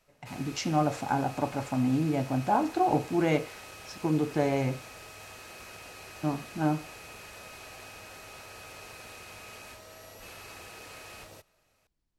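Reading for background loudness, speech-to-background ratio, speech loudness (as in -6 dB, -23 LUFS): -45.0 LUFS, 16.0 dB, -29.0 LUFS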